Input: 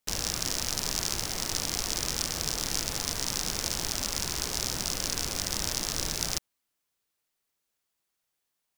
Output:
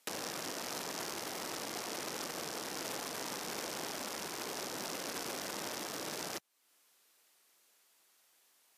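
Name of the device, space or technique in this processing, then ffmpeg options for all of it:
podcast mastering chain: -af "highpass=92,highpass=300,deesser=0.7,acompressor=threshold=-59dB:ratio=2,alimiter=level_in=12.5dB:limit=-24dB:level=0:latency=1:release=25,volume=-12.5dB,volume=14dB" -ar 32000 -c:a libmp3lame -b:a 112k

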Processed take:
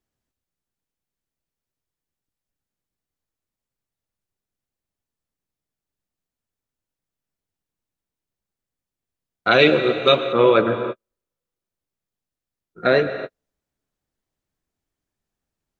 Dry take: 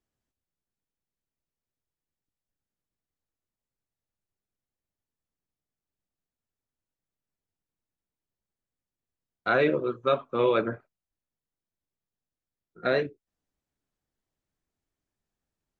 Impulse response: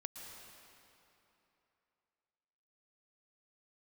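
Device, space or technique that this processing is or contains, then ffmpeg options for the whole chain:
keyed gated reverb: -filter_complex "[0:a]asplit=3[link_01][link_02][link_03];[1:a]atrim=start_sample=2205[link_04];[link_02][link_04]afir=irnorm=-1:irlink=0[link_05];[link_03]apad=whole_len=696373[link_06];[link_05][link_06]sidechaingate=range=-58dB:threshold=-54dB:ratio=16:detection=peak,volume=3.5dB[link_07];[link_01][link_07]amix=inputs=2:normalize=0,asettb=1/sr,asplit=3[link_08][link_09][link_10];[link_08]atrim=end=9.514[link_11];[link_09]atrim=start=9.51:end=10.33,asetpts=PTS-STARTPTS,afade=type=in:duration=0.004:curve=qsin,afade=type=out:start_time=0.816:duration=0.004:curve=qsin,highshelf=frequency=2200:width_type=q:width=1.5:gain=9.5[link_12];[link_10]atrim=start=10.326[link_13];[link_11][link_12]acrossfade=duration=0.004:curve1=hsin:curve2=qsin[link_14];[link_14][link_13]acrossfade=duration=0.004:curve1=qsin:curve2=hsin,volume=3dB"

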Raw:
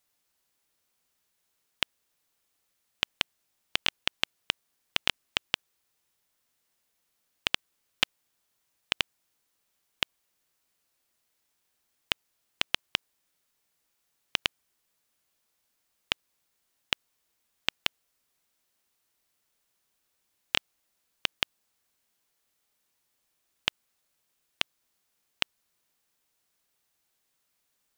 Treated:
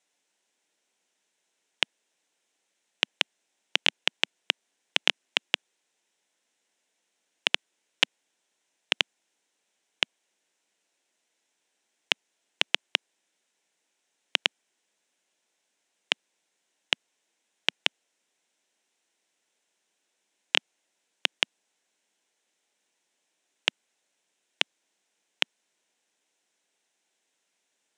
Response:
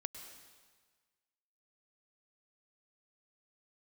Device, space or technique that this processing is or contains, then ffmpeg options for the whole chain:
television speaker: -af "highpass=frequency=210:width=0.5412,highpass=frequency=210:width=1.3066,equalizer=frequency=240:width_type=q:width=4:gain=-3,equalizer=frequency=1200:width_type=q:width=4:gain=-9,equalizer=frequency=4600:width_type=q:width=4:gain=-7,lowpass=frequency=8300:width=0.5412,lowpass=frequency=8300:width=1.3066,volume=4.5dB"

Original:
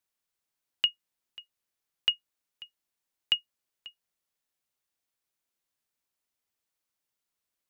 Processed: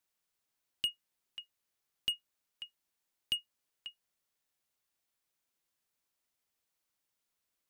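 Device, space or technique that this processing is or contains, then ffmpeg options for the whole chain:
one-band saturation: -filter_complex "[0:a]acrossover=split=440|3900[link_01][link_02][link_03];[link_02]asoftclip=type=tanh:threshold=-36.5dB[link_04];[link_01][link_04][link_03]amix=inputs=3:normalize=0,volume=1dB"

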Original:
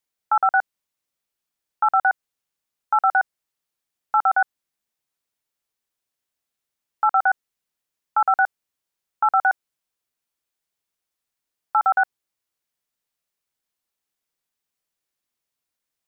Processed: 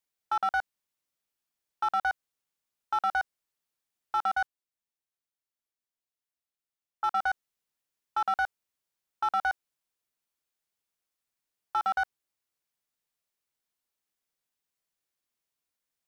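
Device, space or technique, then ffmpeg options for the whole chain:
limiter into clipper: -filter_complex "[0:a]asplit=3[link_01][link_02][link_03];[link_01]afade=type=out:start_time=4.31:duration=0.02[link_04];[link_02]agate=range=-8dB:threshold=-21dB:ratio=16:detection=peak,afade=type=in:start_time=4.31:duration=0.02,afade=type=out:start_time=7.22:duration=0.02[link_05];[link_03]afade=type=in:start_time=7.22:duration=0.02[link_06];[link_04][link_05][link_06]amix=inputs=3:normalize=0,alimiter=limit=-15.5dB:level=0:latency=1:release=21,asoftclip=type=hard:threshold=-18dB,volume=-3.5dB"

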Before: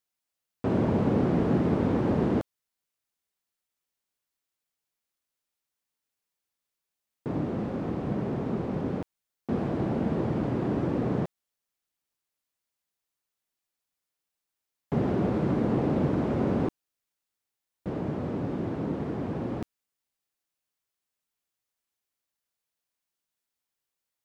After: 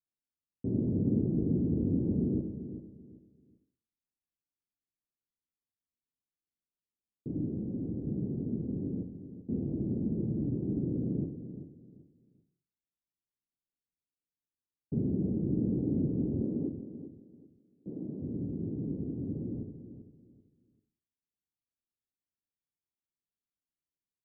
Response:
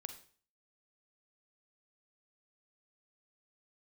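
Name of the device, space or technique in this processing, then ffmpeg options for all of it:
next room: -filter_complex "[0:a]lowpass=frequency=350:width=0.5412,lowpass=frequency=350:width=1.3066[link_01];[1:a]atrim=start_sample=2205[link_02];[link_01][link_02]afir=irnorm=-1:irlink=0,asettb=1/sr,asplit=3[link_03][link_04][link_05];[link_03]atrim=end=16.424[link_06];[link_04]atrim=start=16.42:end=18.22,asetpts=PTS-STARTPTS,afade=type=in:duration=0.004:curve=qsin,afade=type=out:start_time=1.796:duration=0.004:curve=qsin,highpass=200[link_07];[link_05]atrim=start=18.216[link_08];[link_06][link_07]acrossfade=duration=0.004:curve1=hsin:curve2=qsin[link_09];[link_09][link_08]acrossfade=duration=0.004:curve1=qsin:curve2=hsin,equalizer=frequency=2300:width=0.36:gain=4.5,asplit=2[link_10][link_11];[link_11]adelay=388,lowpass=frequency=2000:poles=1,volume=-11dB,asplit=2[link_12][link_13];[link_13]adelay=388,lowpass=frequency=2000:poles=1,volume=0.26,asplit=2[link_14][link_15];[link_15]adelay=388,lowpass=frequency=2000:poles=1,volume=0.26[link_16];[link_10][link_12][link_14][link_16]amix=inputs=4:normalize=0"

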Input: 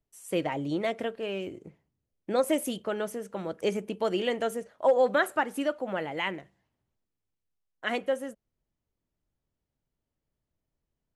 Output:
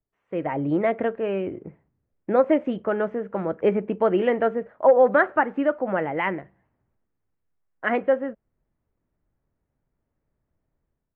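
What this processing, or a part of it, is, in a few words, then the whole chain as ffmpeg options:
action camera in a waterproof case: -af "lowpass=frequency=2000:width=0.5412,lowpass=frequency=2000:width=1.3066,dynaudnorm=framelen=320:gausssize=3:maxgain=11.5dB,volume=-3.5dB" -ar 22050 -c:a aac -b:a 96k

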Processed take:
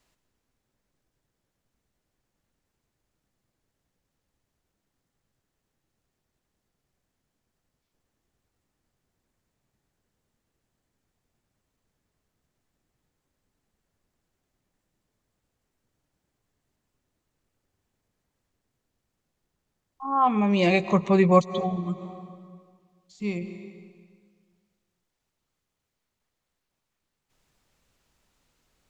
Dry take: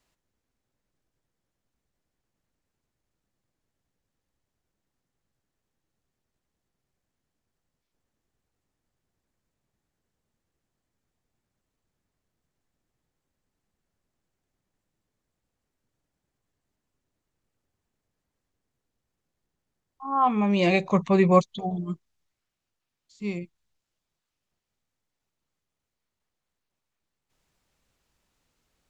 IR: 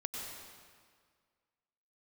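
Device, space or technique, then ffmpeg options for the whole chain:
ducked reverb: -filter_complex "[0:a]asplit=3[link_01][link_02][link_03];[1:a]atrim=start_sample=2205[link_04];[link_02][link_04]afir=irnorm=-1:irlink=0[link_05];[link_03]apad=whole_len=1274187[link_06];[link_05][link_06]sidechaincompress=threshold=-37dB:ratio=8:attack=48:release=145,volume=-4.5dB[link_07];[link_01][link_07]amix=inputs=2:normalize=0"

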